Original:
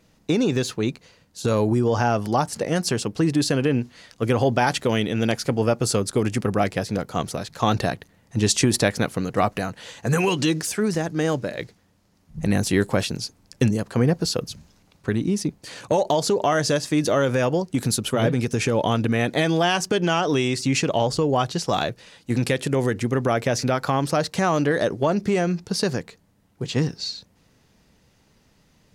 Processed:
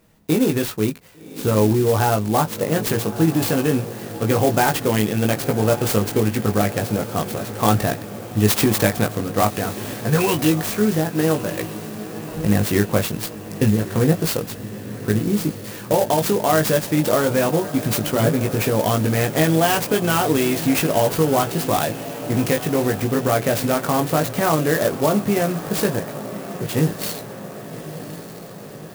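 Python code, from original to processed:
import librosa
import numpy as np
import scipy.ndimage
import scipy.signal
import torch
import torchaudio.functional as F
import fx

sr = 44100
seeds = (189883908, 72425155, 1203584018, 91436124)

y = fx.doubler(x, sr, ms=19.0, db=-4.0)
y = fx.echo_diffused(y, sr, ms=1157, feedback_pct=61, wet_db=-13)
y = fx.clock_jitter(y, sr, seeds[0], jitter_ms=0.055)
y = y * librosa.db_to_amplitude(1.0)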